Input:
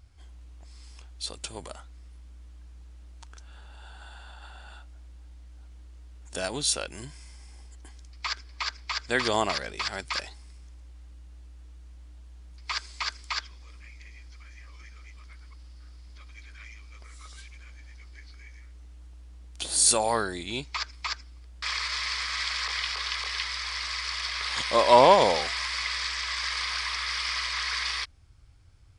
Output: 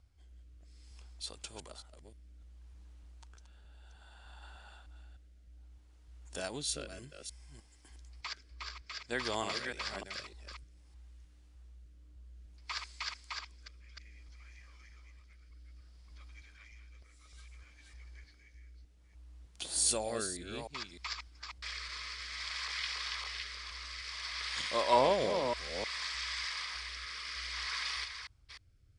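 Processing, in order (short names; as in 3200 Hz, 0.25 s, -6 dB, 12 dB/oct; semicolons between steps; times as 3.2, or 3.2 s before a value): reverse delay 0.304 s, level -6 dB; rotary speaker horn 0.6 Hz; gain -7.5 dB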